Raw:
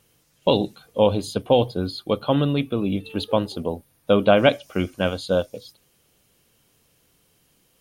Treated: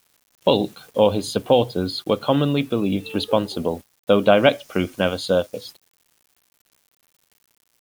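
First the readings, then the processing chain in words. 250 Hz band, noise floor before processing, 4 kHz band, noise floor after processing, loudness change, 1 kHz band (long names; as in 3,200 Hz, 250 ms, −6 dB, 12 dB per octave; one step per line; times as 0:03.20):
+1.5 dB, −64 dBFS, +2.5 dB, −69 dBFS, +1.5 dB, +1.5 dB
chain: high-pass filter 130 Hz 6 dB per octave
in parallel at +1 dB: downward compressor 10 to 1, threshold −28 dBFS, peak gain reduction 17.5 dB
on the sum: bit-depth reduction 8 bits, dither none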